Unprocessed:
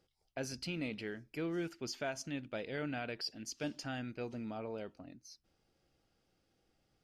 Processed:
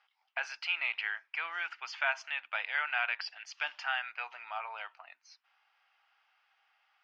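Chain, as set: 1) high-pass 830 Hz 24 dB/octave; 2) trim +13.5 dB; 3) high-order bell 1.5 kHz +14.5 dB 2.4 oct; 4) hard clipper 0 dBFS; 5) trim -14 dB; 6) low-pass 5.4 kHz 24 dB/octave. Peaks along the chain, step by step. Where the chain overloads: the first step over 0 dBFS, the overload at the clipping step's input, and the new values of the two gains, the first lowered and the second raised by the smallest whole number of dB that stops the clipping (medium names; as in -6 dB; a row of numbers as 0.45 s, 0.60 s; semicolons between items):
-26.5 dBFS, -13.0 dBFS, -2.5 dBFS, -2.5 dBFS, -16.5 dBFS, -16.5 dBFS; nothing clips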